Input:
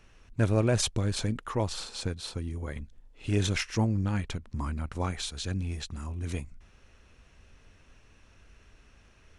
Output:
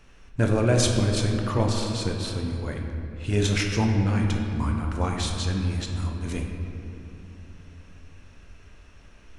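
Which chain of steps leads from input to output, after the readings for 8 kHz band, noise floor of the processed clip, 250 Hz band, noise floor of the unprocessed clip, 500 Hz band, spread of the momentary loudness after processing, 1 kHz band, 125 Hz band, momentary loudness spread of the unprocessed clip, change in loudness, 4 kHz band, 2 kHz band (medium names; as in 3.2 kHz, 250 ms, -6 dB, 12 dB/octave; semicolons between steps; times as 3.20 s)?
+4.0 dB, -50 dBFS, +6.0 dB, -59 dBFS, +6.0 dB, 15 LU, +6.0 dB, +6.0 dB, 12 LU, +5.5 dB, +4.5 dB, +5.5 dB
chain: simulated room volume 120 m³, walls hard, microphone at 0.35 m; trim +3 dB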